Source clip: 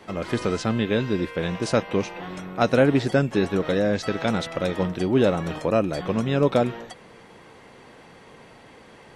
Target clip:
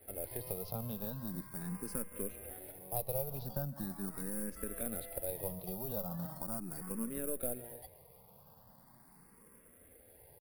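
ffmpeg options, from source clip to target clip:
ffmpeg -i in.wav -filter_complex "[0:a]asetrate=38808,aresample=44100,acrossover=split=270 3800:gain=0.1 1 0.0891[link_01][link_02][link_03];[link_01][link_02][link_03]amix=inputs=3:normalize=0,asplit=2[link_04][link_05];[link_05]acrusher=samples=25:mix=1:aa=0.000001,volume=-11.5dB[link_06];[link_04][link_06]amix=inputs=2:normalize=0,asplit=2[link_07][link_08];[link_08]adelay=155,lowpass=frequency=4500:poles=1,volume=-22dB,asplit=2[link_09][link_10];[link_10]adelay=155,lowpass=frequency=4500:poles=1,volume=0.46,asplit=2[link_11][link_12];[link_12]adelay=155,lowpass=frequency=4500:poles=1,volume=0.46[link_13];[link_07][link_09][link_11][link_13]amix=inputs=4:normalize=0,acompressor=threshold=-25dB:ratio=3,asetrate=50951,aresample=44100,atempo=0.865537,aeval=exprs='0.266*(cos(1*acos(clip(val(0)/0.266,-1,1)))-cos(1*PI/2))+0.015*(cos(4*acos(clip(val(0)/0.266,-1,1)))-cos(4*PI/2))':channel_layout=same,firequalizer=gain_entry='entry(170,0);entry(320,-19);entry(570,-16);entry(1300,-21);entry(3000,-27);entry(4700,-13);entry(6900,-17);entry(10000,14)':delay=0.05:min_phase=1,asplit=2[link_14][link_15];[link_15]afreqshift=0.4[link_16];[link_14][link_16]amix=inputs=2:normalize=1,volume=4.5dB" out.wav

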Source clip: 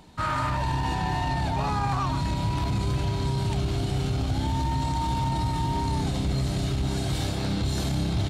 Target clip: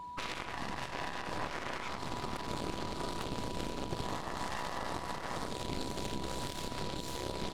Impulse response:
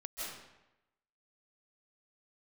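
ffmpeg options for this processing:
-af "atempo=1.1,aeval=exprs='0.178*(cos(1*acos(clip(val(0)/0.178,-1,1)))-cos(1*PI/2))+0.0794*(cos(3*acos(clip(val(0)/0.178,-1,1)))-cos(3*PI/2))+0.00891*(cos(6*acos(clip(val(0)/0.178,-1,1)))-cos(6*PI/2))':channel_layout=same,aeval=exprs='val(0)+0.00562*sin(2*PI*980*n/s)':channel_layout=same,alimiter=level_in=1dB:limit=-24dB:level=0:latency=1:release=237,volume=-1dB,volume=2.5dB"

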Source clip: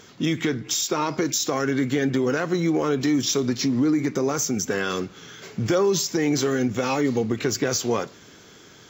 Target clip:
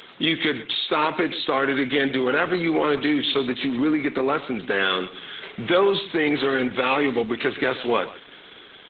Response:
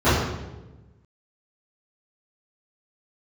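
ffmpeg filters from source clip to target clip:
-filter_complex "[0:a]aemphasis=mode=production:type=riaa,aresample=8000,aresample=44100,highpass=120,aecho=1:1:128:0.158,asettb=1/sr,asplit=3[link_01][link_02][link_03];[link_01]atrim=end=0.434[link_04];[link_02]atrim=start=0.43:end=2.77,asetpts=PTS-STARTPTS,afade=type=in:duration=0.004:curve=qsin,afade=type=out:start_time=2.336:duration=0.004:curve=qsin,agate=range=-33dB:threshold=-34dB:ratio=3:detection=peak[link_05];[link_03]atrim=start=2.766[link_06];[link_04][link_05]acrossfade=duration=0.004:curve1=hsin:curve2=qsin[link_07];[link_07][link_06]acrossfade=duration=0.004:curve1=qsin:curve2=hsin,volume=5dB" -ar 48000 -c:a libopus -b:a 12k

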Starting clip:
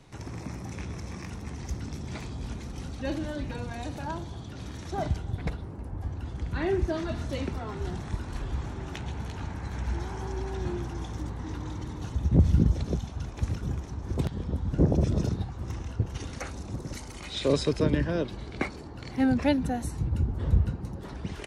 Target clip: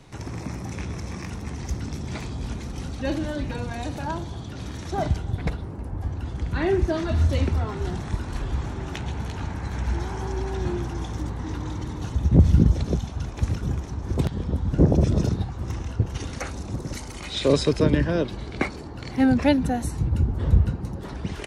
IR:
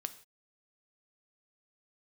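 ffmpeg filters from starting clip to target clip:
-filter_complex "[0:a]asettb=1/sr,asplit=3[link_01][link_02][link_03];[link_01]atrim=end=7.114[link_04];[link_02]atrim=start=7.11:end=7.65,asetpts=PTS-STARTPTS,afade=type=in:duration=0.004:curve=qsin,afade=type=out:start_time=0.536:duration=0.004:curve=qsin,equalizer=frequency=83:width=4.1:gain=15[link_05];[link_03]atrim=start=7.646[link_06];[link_04][link_05]acrossfade=duration=0.004:curve1=hsin:curve2=qsin[link_07];[link_07][link_06]acrossfade=duration=0.004:curve1=qsin:curve2=hsin,volume=5dB"

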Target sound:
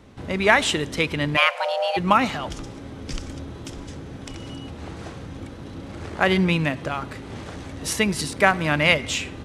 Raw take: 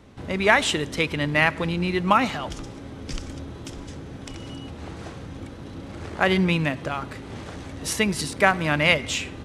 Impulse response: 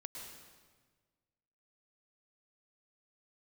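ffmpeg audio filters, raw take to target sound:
-filter_complex "[0:a]asplit=3[link_01][link_02][link_03];[link_01]afade=type=out:start_time=1.36:duration=0.02[link_04];[link_02]afreqshift=430,afade=type=in:start_time=1.36:duration=0.02,afade=type=out:start_time=1.96:duration=0.02[link_05];[link_03]afade=type=in:start_time=1.96:duration=0.02[link_06];[link_04][link_05][link_06]amix=inputs=3:normalize=0,volume=1dB"

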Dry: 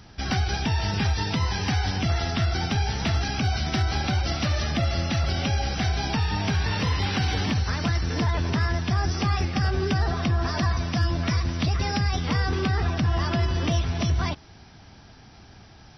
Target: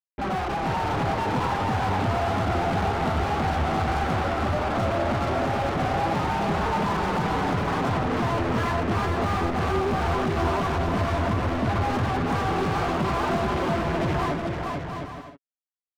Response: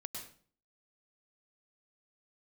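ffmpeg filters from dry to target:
-filter_complex "[0:a]lowpass=frequency=2700:width=0.5412,lowpass=frequency=2700:width=1.3066,aemphasis=mode=reproduction:type=75fm,afwtdn=0.0355,asettb=1/sr,asplit=3[link_01][link_02][link_03];[link_01]atrim=end=4.154[link_04];[link_02]atrim=start=4.15:end=4.78,asetpts=PTS-STARTPTS,afade=type=in:duration=0.004:curve=qsin,afade=type=out:start_time=0.626:duration=0.004:curve=qsin,acrossover=split=86|310[link_05][link_06][link_07];[link_05]acompressor=threshold=-34dB:ratio=4[link_08];[link_06]acompressor=threshold=-35dB:ratio=4[link_09];[link_07]acompressor=threshold=-37dB:ratio=4[link_10];[link_08][link_09][link_10]amix=inputs=3:normalize=0[link_11];[link_03]atrim=start=4.776[link_12];[link_04][link_11]acrossfade=duration=0.004:curve1=hsin:curve2=qsin[link_13];[link_13][link_12]acrossfade=duration=0.004:curve1=qsin:curve2=hsin,acrusher=bits=5:mix=0:aa=0.5,flanger=delay=4.5:depth=8.7:regen=14:speed=0.15:shape=triangular,asplit=2[link_14][link_15];[link_15]highpass=frequency=720:poles=1,volume=38dB,asoftclip=type=tanh:threshold=-15dB[link_16];[link_14][link_16]amix=inputs=2:normalize=0,lowpass=frequency=1400:poles=1,volume=-6dB,aecho=1:1:440|704|862.4|957.4|1014:0.631|0.398|0.251|0.158|0.1,volume=-4dB"

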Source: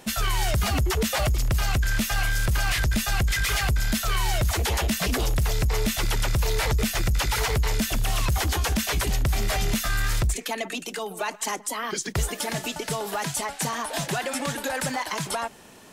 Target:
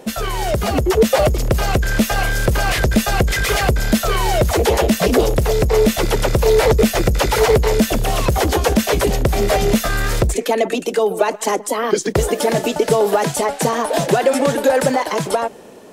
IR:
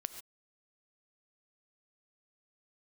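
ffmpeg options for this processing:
-af "equalizer=frequency=480:width=0.97:gain=14.5,dynaudnorm=framelen=380:gausssize=5:maxgain=5.5dB,equalizer=frequency=210:width=1.2:gain=3.5"

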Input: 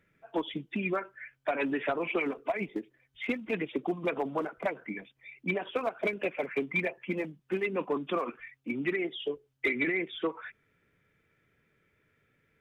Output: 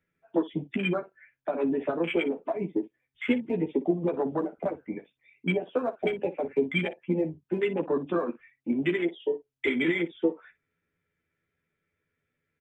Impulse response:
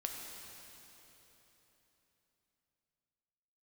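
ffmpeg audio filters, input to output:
-filter_complex "[0:a]acrossover=split=470|3000[link_01][link_02][link_03];[link_02]acompressor=threshold=-38dB:ratio=6[link_04];[link_01][link_04][link_03]amix=inputs=3:normalize=0,afwtdn=0.0158,aecho=1:1:12|60:0.631|0.168,volume=5dB"

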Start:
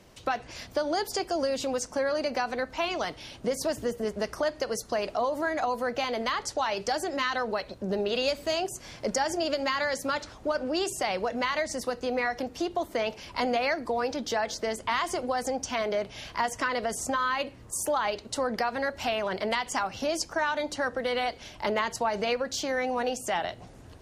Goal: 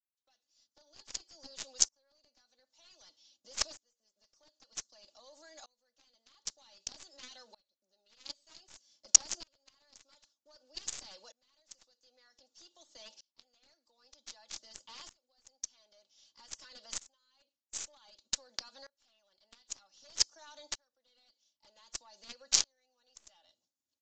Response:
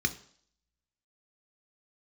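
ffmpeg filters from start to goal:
-filter_complex "[0:a]agate=range=-33dB:threshold=-37dB:ratio=3:detection=peak,highpass=150,aecho=1:1:3.5:0.68,acrossover=split=440[link_01][link_02];[link_01]acompressor=threshold=-46dB:ratio=6[link_03];[link_02]aexciter=amount=12.4:drive=4.1:freq=3300[link_04];[link_03][link_04]amix=inputs=2:normalize=0,aeval=exprs='2.82*(cos(1*acos(clip(val(0)/2.82,-1,1)))-cos(1*PI/2))+0.447*(cos(7*acos(clip(val(0)/2.82,-1,1)))-cos(7*PI/2))+0.0282*(cos(8*acos(clip(val(0)/2.82,-1,1)))-cos(8*PI/2))':channel_layout=same,aresample=16000,aresample=44100,aeval=exprs='val(0)*pow(10,-28*if(lt(mod(-0.53*n/s,1),2*abs(-0.53)/1000),1-mod(-0.53*n/s,1)/(2*abs(-0.53)/1000),(mod(-0.53*n/s,1)-2*abs(-0.53)/1000)/(1-2*abs(-0.53)/1000))/20)':channel_layout=same,volume=-5.5dB"

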